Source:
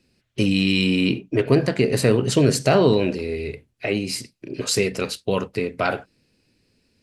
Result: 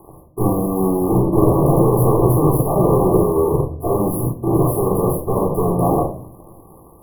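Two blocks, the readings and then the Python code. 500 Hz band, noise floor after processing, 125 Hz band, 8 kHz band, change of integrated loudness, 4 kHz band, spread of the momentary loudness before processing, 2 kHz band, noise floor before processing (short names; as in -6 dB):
+4.5 dB, -45 dBFS, +7.0 dB, -3.0 dB, +4.0 dB, under -40 dB, 13 LU, under -40 dB, -70 dBFS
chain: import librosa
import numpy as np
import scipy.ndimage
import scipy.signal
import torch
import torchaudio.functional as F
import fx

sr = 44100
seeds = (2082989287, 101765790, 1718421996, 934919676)

y = fx.bin_compress(x, sr, power=0.6)
y = fx.fuzz(y, sr, gain_db=36.0, gate_db=-38.0)
y = fx.brickwall_bandstop(y, sr, low_hz=1200.0, high_hz=10000.0)
y = fx.room_shoebox(y, sr, seeds[0], volume_m3=550.0, walls='furnished', distance_m=3.6)
y = fx.upward_expand(y, sr, threshold_db=-18.0, expansion=1.5)
y = y * 10.0 ** (-4.5 / 20.0)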